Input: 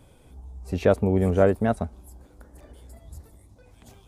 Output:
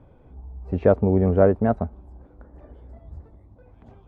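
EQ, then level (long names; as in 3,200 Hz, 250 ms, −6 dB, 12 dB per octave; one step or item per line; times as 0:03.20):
low-pass filter 1,300 Hz 12 dB per octave
+2.5 dB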